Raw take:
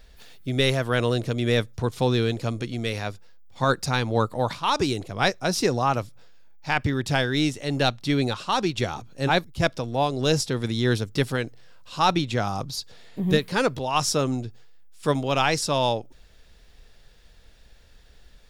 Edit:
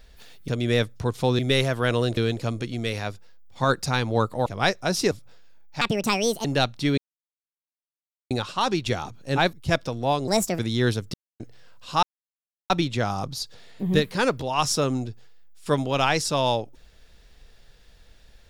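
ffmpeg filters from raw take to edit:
-filter_complex "[0:a]asplit=14[a][b][c][d][e][f][g][h][i][j][k][l][m][n];[a]atrim=end=0.482[o];[b]atrim=start=1.258:end=2.172[p];[c]atrim=start=0.478:end=1.262[q];[d]atrim=start=2.168:end=4.462[r];[e]atrim=start=5.048:end=5.702[s];[f]atrim=start=6.008:end=6.714[t];[g]atrim=start=6.71:end=7.69,asetpts=PTS-STARTPTS,asetrate=67914,aresample=44100[u];[h]atrim=start=7.686:end=8.22,asetpts=PTS-STARTPTS,afade=t=out:st=0.53:d=0.004:c=hsin,apad=pad_dur=1.33[v];[i]atrim=start=8.22:end=10.194,asetpts=PTS-STARTPTS,afade=t=in:d=0.004:c=hsin[w];[j]atrim=start=10.19:end=10.63,asetpts=PTS-STARTPTS,asetrate=62181,aresample=44100[x];[k]atrim=start=10.626:end=11.18,asetpts=PTS-STARTPTS,afade=t=out:st=0.55:d=0.004:c=hsin[y];[l]atrim=start=11.18:end=11.44,asetpts=PTS-STARTPTS,volume=0[z];[m]atrim=start=11.44:end=12.07,asetpts=PTS-STARTPTS,afade=t=in:d=0.004:c=hsin,afade=t=out:st=0.626:d=0.004:c=hsin,apad=pad_dur=0.67[aa];[n]atrim=start=12.07,asetpts=PTS-STARTPTS,afade=t=in:d=0.004:c=hsin[ab];[o][p]acrossfade=d=0.004:c1=hsin:c2=hsin[ac];[ac][q]acrossfade=d=0.004:c1=hsin:c2=hsin[ad];[ad][r]acrossfade=d=0.004:c1=hsin:c2=hsin[ae];[ae][s]acrossfade=d=0.004:c1=hsin:c2=hsin[af];[af][t]acrossfade=d=0.004:c1=hsin:c2=hsin[ag];[ag][u]acrossfade=d=0.004:c1=hsin:c2=hsin[ah];[v][w]concat=n=2:v=0:a=1[ai];[ah][ai]acrossfade=d=0.004:c1=hsin:c2=hsin[aj];[aj][x]acrossfade=d=0.004:c1=hsin:c2=hsin[ak];[y][z][aa][ab]concat=n=4:v=0:a=1[al];[ak][al]acrossfade=d=0.004:c1=hsin:c2=hsin"

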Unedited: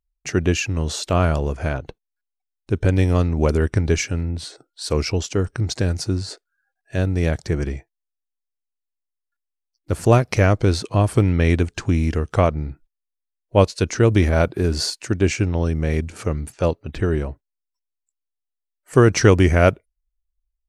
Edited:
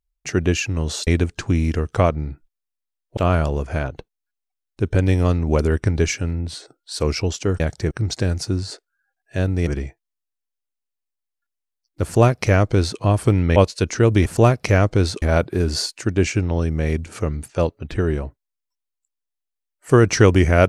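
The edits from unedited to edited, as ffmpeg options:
-filter_complex "[0:a]asplit=9[a][b][c][d][e][f][g][h][i];[a]atrim=end=1.072[j];[b]atrim=start=11.458:end=13.562[k];[c]atrim=start=1.068:end=5.502[l];[d]atrim=start=7.258:end=7.572[m];[e]atrim=start=5.498:end=7.262[n];[f]atrim=start=7.568:end=11.462[o];[g]atrim=start=13.558:end=14.262[p];[h]atrim=start=9.938:end=10.902[q];[i]atrim=start=14.258[r];[j][k]acrossfade=d=0.004:c1=hsin:c2=hsin[s];[s][l]acrossfade=d=0.004:c1=hsin:c2=hsin[t];[t][m]acrossfade=d=0.004:c1=hsin:c2=hsin[u];[u][n]acrossfade=d=0.004:c1=hsin:c2=hsin[v];[v][o]acrossfade=d=0.004:c1=hsin:c2=hsin[w];[w][p]acrossfade=d=0.004:c1=hsin:c2=hsin[x];[x][q]acrossfade=d=0.004:c1=hsin:c2=hsin[y];[y][r]acrossfade=d=0.004:c1=hsin:c2=hsin"

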